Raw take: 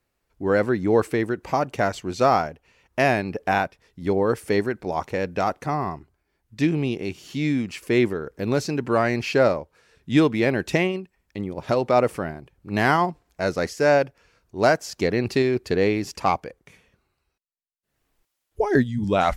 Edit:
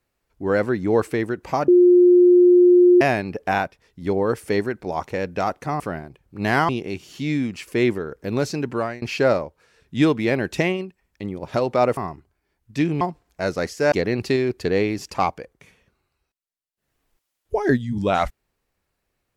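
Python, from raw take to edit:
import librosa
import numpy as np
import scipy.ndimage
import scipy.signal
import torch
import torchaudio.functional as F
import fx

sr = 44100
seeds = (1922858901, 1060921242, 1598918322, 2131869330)

y = fx.edit(x, sr, fx.bleep(start_s=1.68, length_s=1.33, hz=356.0, db=-9.0),
    fx.swap(start_s=5.8, length_s=1.04, other_s=12.12, other_length_s=0.89),
    fx.fade_out_to(start_s=8.83, length_s=0.34, floor_db=-23.0),
    fx.cut(start_s=13.92, length_s=1.06), tone=tone)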